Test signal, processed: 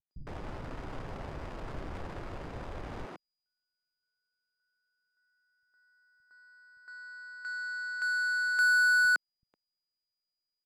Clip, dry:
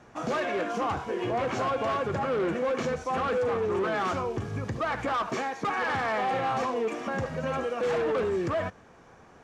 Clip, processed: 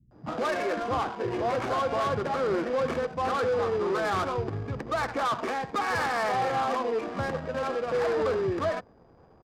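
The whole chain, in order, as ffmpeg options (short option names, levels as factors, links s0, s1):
-filter_complex "[0:a]aeval=exprs='val(0)+0.00316*sin(2*PI*4900*n/s)':c=same,acrossover=split=200[s0][s1];[s1]adelay=110[s2];[s0][s2]amix=inputs=2:normalize=0,adynamicsmooth=sensitivity=6.5:basefreq=540,volume=1.12"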